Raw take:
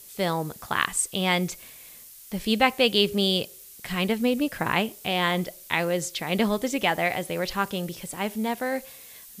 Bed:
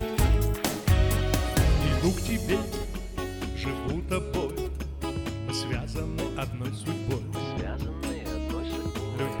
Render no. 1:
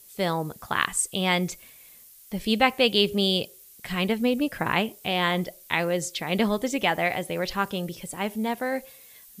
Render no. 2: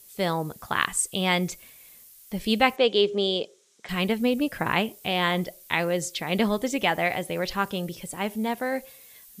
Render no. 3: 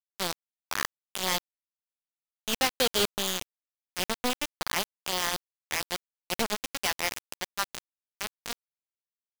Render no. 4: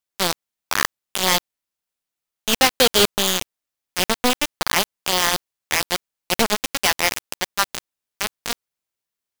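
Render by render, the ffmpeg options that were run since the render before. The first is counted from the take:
-af "afftdn=nr=6:nf=-47"
-filter_complex "[0:a]asettb=1/sr,asplit=3[a][b][c];[a]atrim=end=2.764[d];[b]atrim=start=2.76:end=3.89,asetpts=PTS-STARTPTS,afade=t=in:d=0.004:c=qsin,afade=t=out:st=1.126:d=0.004:c=qsin,highpass=280,equalizer=f=430:t=q:w=4:g=5,equalizer=f=1.9k:t=q:w=4:g=-3,equalizer=f=2.7k:t=q:w=4:g=-6,equalizer=f=4.6k:t=q:w=4:g=-7,lowpass=f=6.7k:w=0.5412,lowpass=f=6.7k:w=1.3066[e];[c]atrim=start=3.886[f];[d][e]acrossfade=d=0.004:c1=hsin:c2=qsin[g];[g][f]acrossfade=d=0.004:c1=qsin:c2=hsin"
-af "aresample=8000,asoftclip=type=tanh:threshold=-22.5dB,aresample=44100,acrusher=bits=3:mix=0:aa=0.000001"
-af "volume=10dB"

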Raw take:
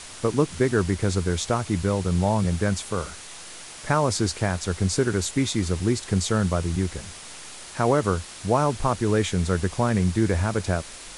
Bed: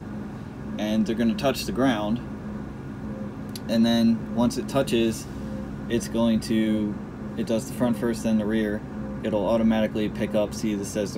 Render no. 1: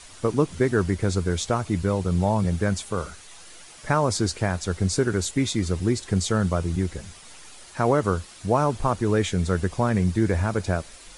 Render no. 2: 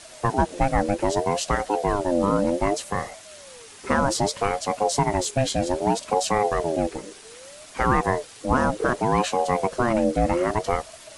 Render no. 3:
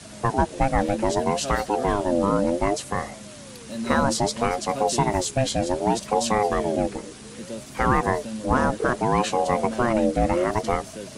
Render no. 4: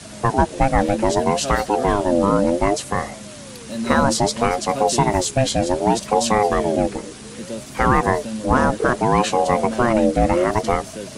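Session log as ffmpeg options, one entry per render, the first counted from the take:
-af "afftdn=nr=8:nf=-41"
-filter_complex "[0:a]asplit=2[a][b];[b]asoftclip=type=tanh:threshold=-15.5dB,volume=-4.5dB[c];[a][c]amix=inputs=2:normalize=0,aeval=exprs='val(0)*sin(2*PI*520*n/s+520*0.25/0.64*sin(2*PI*0.64*n/s))':c=same"
-filter_complex "[1:a]volume=-10.5dB[a];[0:a][a]amix=inputs=2:normalize=0"
-af "volume=4.5dB,alimiter=limit=-3dB:level=0:latency=1"

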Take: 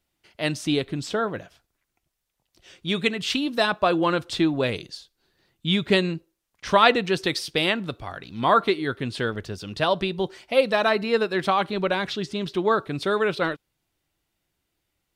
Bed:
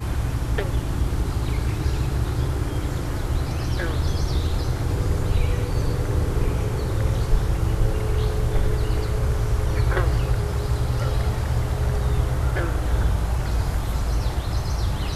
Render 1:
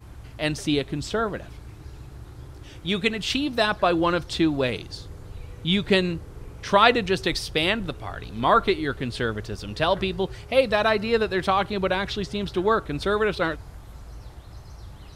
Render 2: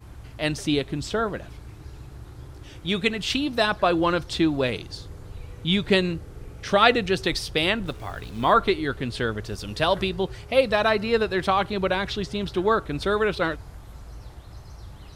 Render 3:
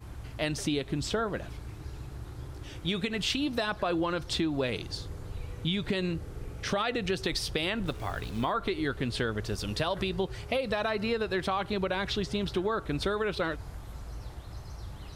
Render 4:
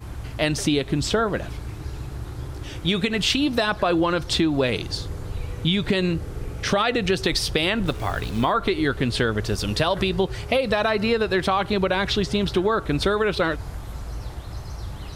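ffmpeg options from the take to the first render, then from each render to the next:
-filter_complex "[1:a]volume=-18dB[a];[0:a][a]amix=inputs=2:normalize=0"
-filter_complex "[0:a]asettb=1/sr,asplit=3[a][b][c];[a]atrim=end=6.134[d];[b]atrim=start=6.13:end=7.16,asetpts=PTS-STARTPTS,afade=t=in:d=0.004:c=qsin,afade=t=out:st=1.026:d=0.004:c=qsin,bandreject=f=1k:w=6.8[e];[c]atrim=start=7.156[f];[d][e]acrossfade=d=0.004:c1=hsin:c2=qsin[g];[g][f]acrossfade=d=0.004:c1=qsin:c2=hsin,asettb=1/sr,asplit=3[h][i][j];[h]atrim=end=7.864[k];[i]atrim=start=7.86:end=8.53,asetpts=PTS-STARTPTS,afade=t=in:d=0.004:c=qsin,afade=t=out:st=0.666:d=0.004:c=qsin,acrusher=bits=7:mix=0:aa=0.5[l];[j]atrim=start=8.526[m];[k][l]acrossfade=d=0.004:c1=hsin:c2=qsin[n];[n][m]acrossfade=d=0.004:c1=qsin:c2=hsin,asettb=1/sr,asplit=3[o][p][q];[o]atrim=end=9.464[r];[p]atrim=start=9.46:end=10.09,asetpts=PTS-STARTPTS,afade=t=in:d=0.004:c=qsin,afade=t=out:st=0.626:d=0.004:c=qsin,highshelf=f=6.4k:g=7[s];[q]atrim=start=10.086[t];[r][s]acrossfade=d=0.004:c1=hsin:c2=qsin[u];[u][t]acrossfade=d=0.004:c1=qsin:c2=hsin"
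-af "alimiter=limit=-14dB:level=0:latency=1:release=78,acompressor=threshold=-26dB:ratio=6"
-af "volume=8.5dB"

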